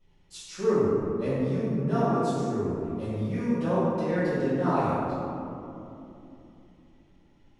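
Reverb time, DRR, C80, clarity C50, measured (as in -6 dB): 3.0 s, -15.5 dB, -2.0 dB, -5.0 dB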